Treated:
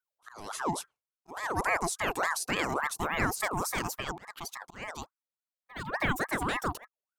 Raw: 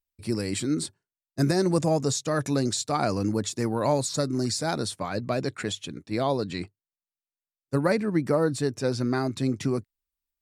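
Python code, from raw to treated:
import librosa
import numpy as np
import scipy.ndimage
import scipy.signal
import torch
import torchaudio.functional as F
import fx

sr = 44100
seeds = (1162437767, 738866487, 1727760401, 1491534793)

y = fx.speed_glide(x, sr, from_pct=101, to_pct=189)
y = fx.auto_swell(y, sr, attack_ms=393.0)
y = fx.ring_lfo(y, sr, carrier_hz=1000.0, swing_pct=50, hz=3.5)
y = y * librosa.db_to_amplitude(-2.0)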